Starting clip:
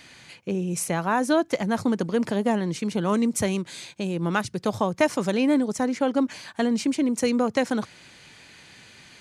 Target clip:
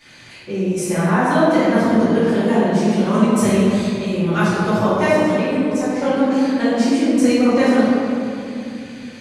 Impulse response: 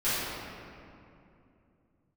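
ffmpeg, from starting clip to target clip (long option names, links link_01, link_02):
-filter_complex "[0:a]asettb=1/sr,asplit=3[link_01][link_02][link_03];[link_01]atrim=end=0.824[link_04];[link_02]atrim=start=0.82:end=1.47,asetpts=PTS-STARTPTS,afade=type=in:duration=0.004:curve=qsin,afade=type=out:start_time=0.646:duration=0.004:curve=qsin,bass=frequency=250:gain=0,treble=frequency=4000:gain=-6[link_05];[link_03]atrim=start=1.466[link_06];[link_04][link_05]acrossfade=duration=0.004:curve1=hsin:curve2=qsin[link_07];[link_07][link_06]acrossfade=duration=0.004:curve1=qsin:curve2=hsin,asplit=3[link_08][link_09][link_10];[link_08]afade=type=out:start_time=5.09:duration=0.02[link_11];[link_09]acompressor=threshold=-25dB:ratio=6,afade=type=in:start_time=5.09:duration=0.02,afade=type=out:start_time=5.99:duration=0.02[link_12];[link_10]afade=type=in:start_time=5.99:duration=0.02[link_13];[link_11][link_12][link_13]amix=inputs=3:normalize=0[link_14];[1:a]atrim=start_sample=2205[link_15];[link_14][link_15]afir=irnorm=-1:irlink=0,volume=-4.5dB"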